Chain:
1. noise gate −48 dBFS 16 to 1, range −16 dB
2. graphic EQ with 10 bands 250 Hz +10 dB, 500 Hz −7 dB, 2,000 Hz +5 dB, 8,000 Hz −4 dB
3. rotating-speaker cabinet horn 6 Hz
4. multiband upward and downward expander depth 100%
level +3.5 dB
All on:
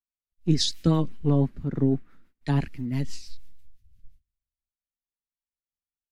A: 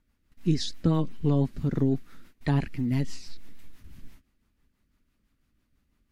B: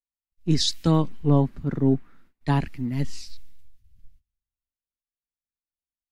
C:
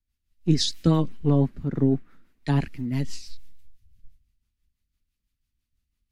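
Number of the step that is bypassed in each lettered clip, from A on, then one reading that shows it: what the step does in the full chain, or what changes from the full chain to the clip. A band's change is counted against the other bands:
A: 4, 8 kHz band −6.0 dB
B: 3, 1 kHz band +4.5 dB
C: 1, change in integrated loudness +1.5 LU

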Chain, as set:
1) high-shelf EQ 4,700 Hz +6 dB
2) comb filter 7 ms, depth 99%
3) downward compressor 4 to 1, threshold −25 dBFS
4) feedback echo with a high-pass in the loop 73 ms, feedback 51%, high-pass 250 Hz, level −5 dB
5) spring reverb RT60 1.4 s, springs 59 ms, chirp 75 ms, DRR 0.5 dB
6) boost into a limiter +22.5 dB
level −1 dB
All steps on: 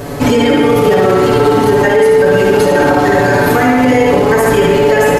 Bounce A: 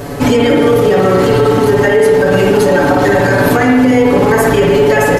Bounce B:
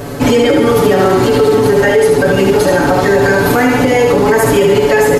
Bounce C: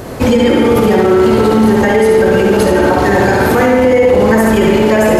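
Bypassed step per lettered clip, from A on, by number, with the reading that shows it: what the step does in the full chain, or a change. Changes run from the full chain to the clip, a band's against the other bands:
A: 4, 125 Hz band +2.0 dB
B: 5, 8 kHz band +3.0 dB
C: 2, 250 Hz band +3.5 dB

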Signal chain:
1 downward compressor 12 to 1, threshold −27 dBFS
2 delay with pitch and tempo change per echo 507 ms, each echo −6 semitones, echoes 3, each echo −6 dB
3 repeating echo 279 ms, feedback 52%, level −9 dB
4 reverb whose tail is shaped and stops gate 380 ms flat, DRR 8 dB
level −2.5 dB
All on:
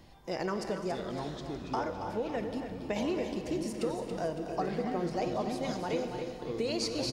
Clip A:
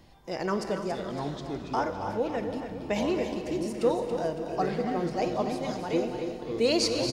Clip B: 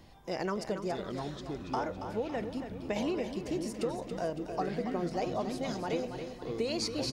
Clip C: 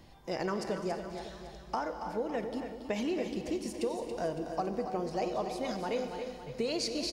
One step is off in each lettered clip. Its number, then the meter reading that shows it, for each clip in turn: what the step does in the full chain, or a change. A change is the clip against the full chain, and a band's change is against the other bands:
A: 1, average gain reduction 2.0 dB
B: 4, echo-to-direct ratio −4.5 dB to −7.5 dB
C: 2, 125 Hz band −4.0 dB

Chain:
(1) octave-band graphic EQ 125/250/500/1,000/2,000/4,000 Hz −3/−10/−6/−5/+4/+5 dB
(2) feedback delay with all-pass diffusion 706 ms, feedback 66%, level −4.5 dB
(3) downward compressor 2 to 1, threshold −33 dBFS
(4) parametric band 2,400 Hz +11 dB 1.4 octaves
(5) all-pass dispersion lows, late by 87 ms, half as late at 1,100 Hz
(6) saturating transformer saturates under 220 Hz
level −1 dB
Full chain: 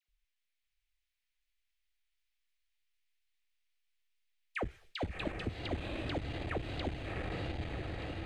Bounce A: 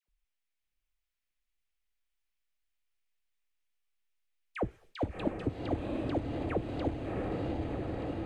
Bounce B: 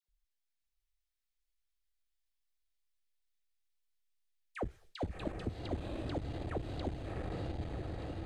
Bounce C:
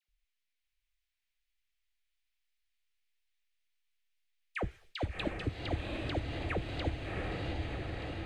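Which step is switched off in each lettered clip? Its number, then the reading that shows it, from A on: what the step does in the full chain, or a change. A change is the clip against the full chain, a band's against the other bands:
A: 1, change in momentary loudness spread +2 LU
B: 4, 2 kHz band −7.5 dB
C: 6, change in integrated loudness +1.5 LU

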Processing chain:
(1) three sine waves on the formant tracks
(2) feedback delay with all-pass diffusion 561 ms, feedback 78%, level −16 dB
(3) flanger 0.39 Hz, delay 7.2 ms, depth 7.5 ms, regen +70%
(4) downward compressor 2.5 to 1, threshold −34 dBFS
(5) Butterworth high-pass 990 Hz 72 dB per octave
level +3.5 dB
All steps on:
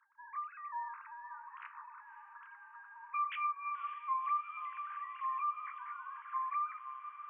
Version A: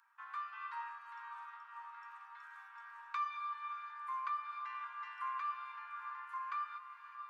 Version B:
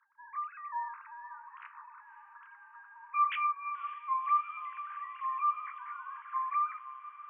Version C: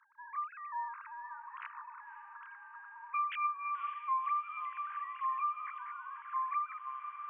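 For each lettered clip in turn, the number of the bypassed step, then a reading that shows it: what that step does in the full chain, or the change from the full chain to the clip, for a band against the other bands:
1, change in crest factor +1.5 dB
4, change in momentary loudness spread +5 LU
3, change in momentary loudness spread −2 LU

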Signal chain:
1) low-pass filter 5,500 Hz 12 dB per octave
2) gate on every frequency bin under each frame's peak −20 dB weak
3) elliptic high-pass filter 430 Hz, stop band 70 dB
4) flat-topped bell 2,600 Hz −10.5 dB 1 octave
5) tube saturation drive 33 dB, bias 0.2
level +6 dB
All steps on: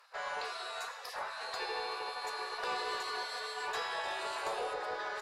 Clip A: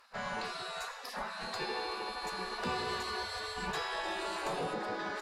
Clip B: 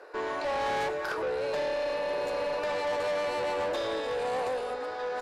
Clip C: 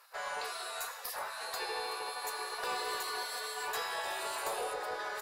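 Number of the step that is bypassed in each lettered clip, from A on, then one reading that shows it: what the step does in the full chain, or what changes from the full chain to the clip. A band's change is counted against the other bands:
3, 250 Hz band +12.5 dB
2, 250 Hz band +12.5 dB
1, 8 kHz band +8.0 dB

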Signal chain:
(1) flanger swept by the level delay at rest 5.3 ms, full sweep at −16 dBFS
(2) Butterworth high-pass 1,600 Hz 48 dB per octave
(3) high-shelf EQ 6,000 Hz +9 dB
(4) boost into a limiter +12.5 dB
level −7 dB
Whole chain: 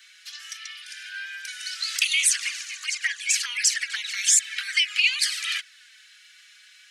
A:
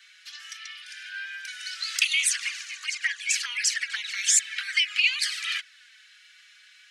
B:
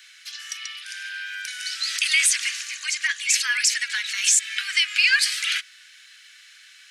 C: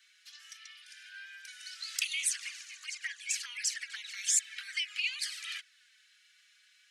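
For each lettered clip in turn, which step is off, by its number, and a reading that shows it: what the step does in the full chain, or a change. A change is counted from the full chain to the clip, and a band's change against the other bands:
3, 8 kHz band −2.5 dB
1, 8 kHz band −3.0 dB
4, change in crest factor +6.5 dB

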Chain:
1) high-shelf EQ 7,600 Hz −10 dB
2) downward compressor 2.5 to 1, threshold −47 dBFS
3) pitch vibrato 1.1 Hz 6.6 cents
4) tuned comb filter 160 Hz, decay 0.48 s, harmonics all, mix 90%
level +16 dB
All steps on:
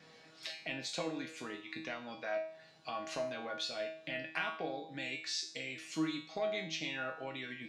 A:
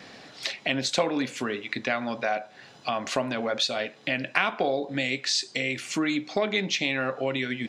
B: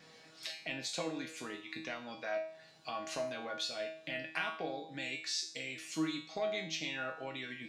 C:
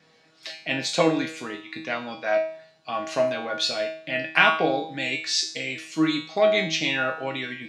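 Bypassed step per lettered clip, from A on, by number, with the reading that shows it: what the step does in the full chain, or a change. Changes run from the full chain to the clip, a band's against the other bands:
4, change in crest factor +3.0 dB
1, 8 kHz band +3.0 dB
2, average gain reduction 12.5 dB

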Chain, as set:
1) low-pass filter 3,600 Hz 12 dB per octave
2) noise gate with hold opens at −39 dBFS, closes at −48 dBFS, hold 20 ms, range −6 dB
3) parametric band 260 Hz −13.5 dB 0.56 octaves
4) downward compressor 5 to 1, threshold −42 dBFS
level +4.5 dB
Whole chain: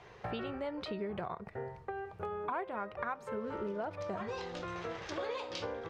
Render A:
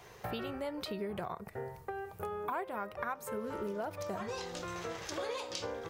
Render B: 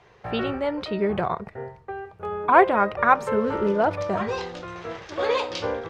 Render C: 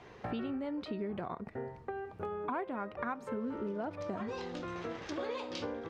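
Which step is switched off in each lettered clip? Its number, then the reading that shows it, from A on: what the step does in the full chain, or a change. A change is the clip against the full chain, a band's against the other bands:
1, 4 kHz band +2.5 dB
4, average gain reduction 11.5 dB
3, 250 Hz band +6.0 dB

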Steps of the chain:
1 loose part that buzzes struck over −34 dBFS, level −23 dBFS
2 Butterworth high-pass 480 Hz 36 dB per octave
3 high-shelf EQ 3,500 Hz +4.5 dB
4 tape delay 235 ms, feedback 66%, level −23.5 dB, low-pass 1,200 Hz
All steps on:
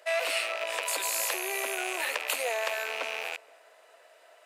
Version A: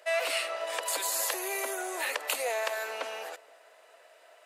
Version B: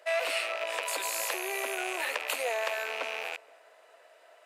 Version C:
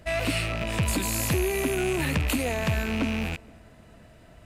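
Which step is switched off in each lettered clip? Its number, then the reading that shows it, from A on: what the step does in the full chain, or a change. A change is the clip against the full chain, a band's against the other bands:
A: 1, 2 kHz band −3.0 dB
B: 3, 8 kHz band −3.5 dB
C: 2, 250 Hz band +21.0 dB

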